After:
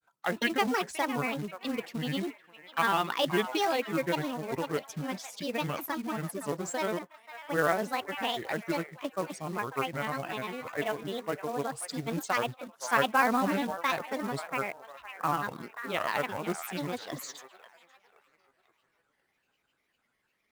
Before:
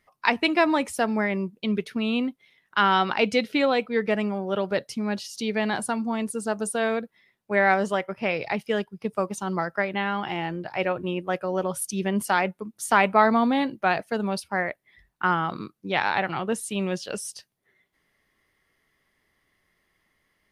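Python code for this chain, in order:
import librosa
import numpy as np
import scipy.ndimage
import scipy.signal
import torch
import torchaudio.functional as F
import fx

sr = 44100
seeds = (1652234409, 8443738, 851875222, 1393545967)

y = scipy.signal.sosfilt(scipy.signal.butter(2, 43.0, 'highpass', fs=sr, output='sos'), x)
y = fx.peak_eq(y, sr, hz=78.0, db=-8.0, octaves=1.6)
y = fx.echo_wet_bandpass(y, sr, ms=521, feedback_pct=37, hz=1400.0, wet_db=-10.5)
y = fx.granulator(y, sr, seeds[0], grain_ms=100.0, per_s=20.0, spray_ms=13.0, spread_st=7)
y = fx.quant_float(y, sr, bits=2)
y = y * librosa.db_to_amplitude(-5.0)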